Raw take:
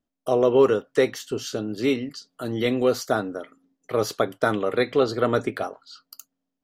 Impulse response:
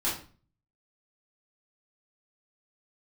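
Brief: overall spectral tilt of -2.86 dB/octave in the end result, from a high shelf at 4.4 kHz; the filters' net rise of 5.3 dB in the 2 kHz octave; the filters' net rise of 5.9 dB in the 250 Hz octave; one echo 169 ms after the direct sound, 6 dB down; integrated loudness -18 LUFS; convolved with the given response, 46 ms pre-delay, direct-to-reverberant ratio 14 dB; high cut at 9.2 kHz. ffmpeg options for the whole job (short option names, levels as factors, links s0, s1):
-filter_complex "[0:a]lowpass=9200,equalizer=f=250:t=o:g=7,equalizer=f=2000:t=o:g=8.5,highshelf=f=4400:g=-8.5,aecho=1:1:169:0.501,asplit=2[s0][s1];[1:a]atrim=start_sample=2205,adelay=46[s2];[s1][s2]afir=irnorm=-1:irlink=0,volume=0.0794[s3];[s0][s3]amix=inputs=2:normalize=0,volume=1.19"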